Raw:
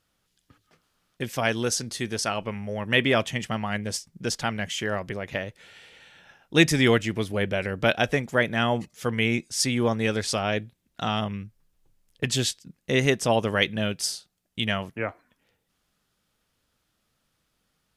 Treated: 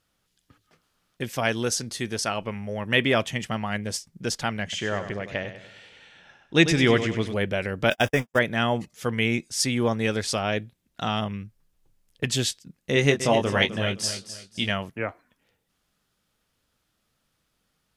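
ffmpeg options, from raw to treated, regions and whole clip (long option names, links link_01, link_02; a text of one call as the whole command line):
ffmpeg -i in.wav -filter_complex "[0:a]asettb=1/sr,asplit=3[link_01][link_02][link_03];[link_01]atrim=end=4.634[link_04];[link_02]atrim=start=4.63:end=7.34,asetpts=PTS-STARTPTS,afade=type=in:duration=0.004:curve=qsin,afade=type=out:start_time=2.706:duration=0.004:curve=qsin,lowpass=7300,aecho=1:1:97|194|291|388|485:0.316|0.136|0.0585|0.0251|0.0108,atrim=end_sample=119511[link_05];[link_03]atrim=start=7.336[link_06];[link_04][link_05]acrossfade=duration=0.004:curve1=hsin:curve2=qsin[link_07];[link_07][link_06]acrossfade=duration=0.004:curve1=qsin:curve2=hsin,asettb=1/sr,asplit=3[link_08][link_09][link_10];[link_08]atrim=end=7.904[link_11];[link_09]atrim=start=7.9:end=8.39,asetpts=PTS-STARTPTS,afade=type=in:duration=0.004:curve=qsin,afade=type=out:start_time=0.486:duration=0.004:curve=qsin,aeval=exprs='val(0)+0.5*0.0422*sgn(val(0))':channel_layout=same,agate=range=-59dB:threshold=-25dB:ratio=16:release=100:detection=peak,asuperstop=centerf=4200:order=12:qfactor=4.7[link_12];[link_10]atrim=start=8.386[link_13];[link_11][link_12]acrossfade=duration=0.004:curve1=hsin:curve2=qsin[link_14];[link_14][link_13]acrossfade=duration=0.004:curve1=qsin:curve2=hsin,asettb=1/sr,asplit=3[link_15][link_16][link_17];[link_15]atrim=end=12.944[link_18];[link_16]atrim=start=12.94:end=14.7,asetpts=PTS-STARTPTS,afade=type=in:duration=0.004:curve=qsin,afade=type=out:start_time=1.756:duration=0.004:curve=qsin,lowpass=10000,asplit=2[link_19][link_20];[link_20]adelay=21,volume=-5.5dB[link_21];[link_19][link_21]amix=inputs=2:normalize=0,atrim=end_sample=77616,aecho=1:1:259|518|777:0.266|0.0851|0.0272,atrim=end_sample=77616[link_22];[link_17]atrim=start=14.696[link_23];[link_18][link_22]acrossfade=duration=0.004:curve1=hsin:curve2=qsin[link_24];[link_24][link_23]acrossfade=duration=0.004:curve1=qsin:curve2=hsin" out.wav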